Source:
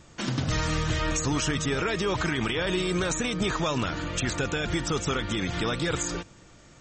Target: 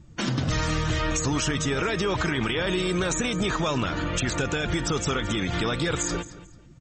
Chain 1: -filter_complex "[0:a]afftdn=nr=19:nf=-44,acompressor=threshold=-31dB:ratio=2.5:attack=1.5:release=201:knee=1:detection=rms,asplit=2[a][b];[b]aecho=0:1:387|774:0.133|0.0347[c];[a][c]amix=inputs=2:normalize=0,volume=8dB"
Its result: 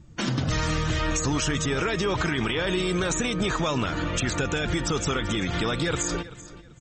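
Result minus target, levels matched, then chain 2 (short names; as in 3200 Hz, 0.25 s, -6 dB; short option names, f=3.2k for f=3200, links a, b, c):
echo 0.166 s late
-filter_complex "[0:a]afftdn=nr=19:nf=-44,acompressor=threshold=-31dB:ratio=2.5:attack=1.5:release=201:knee=1:detection=rms,asplit=2[a][b];[b]aecho=0:1:221|442:0.133|0.0347[c];[a][c]amix=inputs=2:normalize=0,volume=8dB"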